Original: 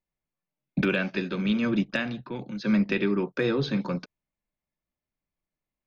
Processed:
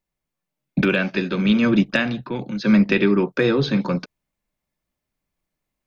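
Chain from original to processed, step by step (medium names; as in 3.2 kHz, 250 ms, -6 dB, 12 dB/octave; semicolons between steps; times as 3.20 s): gain riding 2 s; trim +7 dB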